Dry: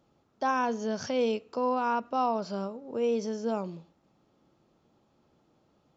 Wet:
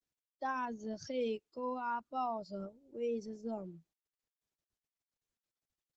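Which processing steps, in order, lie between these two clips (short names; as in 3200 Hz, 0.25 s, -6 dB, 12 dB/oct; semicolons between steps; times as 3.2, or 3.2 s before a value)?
per-bin expansion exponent 2; gain -6 dB; Opus 12 kbps 48000 Hz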